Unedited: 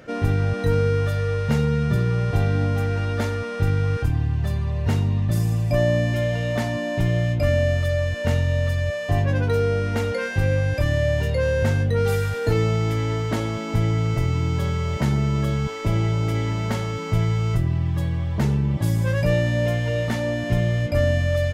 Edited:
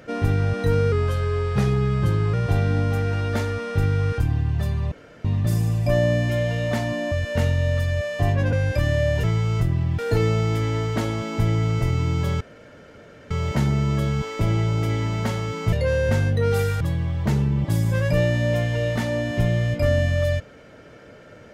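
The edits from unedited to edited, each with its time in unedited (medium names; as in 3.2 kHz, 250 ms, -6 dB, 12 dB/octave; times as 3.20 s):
0.92–2.18 s: speed 89%
4.76–5.09 s: room tone
6.96–8.01 s: delete
9.42–10.55 s: delete
11.26–12.34 s: swap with 17.18–17.93 s
14.76 s: insert room tone 0.90 s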